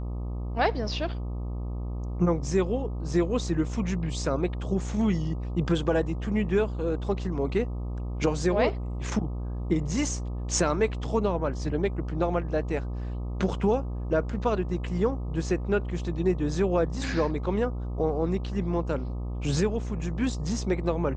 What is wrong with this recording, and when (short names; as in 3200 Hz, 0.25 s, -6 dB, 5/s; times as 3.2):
buzz 60 Hz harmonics 21 -32 dBFS